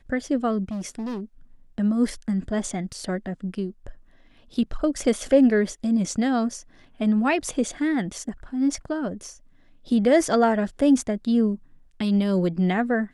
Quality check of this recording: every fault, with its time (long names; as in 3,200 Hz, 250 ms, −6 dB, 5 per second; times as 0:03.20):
0:00.69–0:01.21: clipping −27 dBFS